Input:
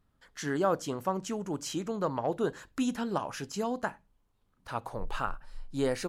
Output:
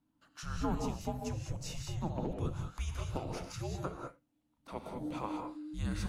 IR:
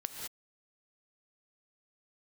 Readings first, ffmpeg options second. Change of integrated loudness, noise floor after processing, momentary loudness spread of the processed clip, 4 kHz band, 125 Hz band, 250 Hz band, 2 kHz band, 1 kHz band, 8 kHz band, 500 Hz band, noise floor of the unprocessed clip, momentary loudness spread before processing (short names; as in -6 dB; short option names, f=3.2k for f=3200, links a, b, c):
-6.0 dB, -77 dBFS, 9 LU, -5.5 dB, +3.5 dB, -6.0 dB, -10.0 dB, -8.0 dB, -5.5 dB, -10.5 dB, -72 dBFS, 9 LU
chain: -filter_complex "[0:a]afreqshift=-320[a];[1:a]atrim=start_sample=2205[b];[a][b]afir=irnorm=-1:irlink=0,volume=-5.5dB"